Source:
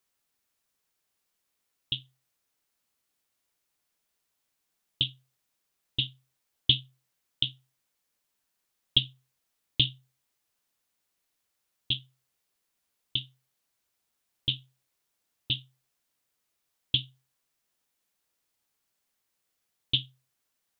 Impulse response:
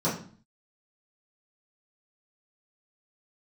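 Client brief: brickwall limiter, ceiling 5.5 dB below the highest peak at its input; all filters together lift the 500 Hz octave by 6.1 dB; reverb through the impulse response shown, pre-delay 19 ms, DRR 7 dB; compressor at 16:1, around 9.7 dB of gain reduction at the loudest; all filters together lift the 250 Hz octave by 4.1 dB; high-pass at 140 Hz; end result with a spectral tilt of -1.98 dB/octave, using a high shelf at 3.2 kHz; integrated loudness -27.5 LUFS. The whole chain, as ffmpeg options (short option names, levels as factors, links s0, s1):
-filter_complex "[0:a]highpass=140,equalizer=f=250:t=o:g=5.5,equalizer=f=500:t=o:g=6,highshelf=f=3200:g=4,acompressor=threshold=0.0562:ratio=16,alimiter=limit=0.2:level=0:latency=1,asplit=2[s0][s1];[1:a]atrim=start_sample=2205,adelay=19[s2];[s1][s2]afir=irnorm=-1:irlink=0,volume=0.119[s3];[s0][s3]amix=inputs=2:normalize=0,volume=2.66"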